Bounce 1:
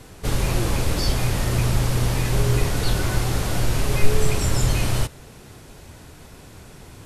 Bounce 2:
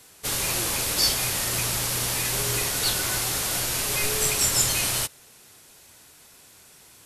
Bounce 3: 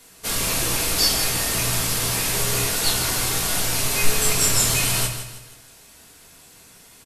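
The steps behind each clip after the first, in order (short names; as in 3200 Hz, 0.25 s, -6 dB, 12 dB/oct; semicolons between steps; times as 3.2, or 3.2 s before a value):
tilt +3.5 dB/oct; upward expander 1.5:1, over -37 dBFS
feedback echo 0.16 s, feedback 39%, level -10 dB; reverb RT60 0.40 s, pre-delay 4 ms, DRR 0 dB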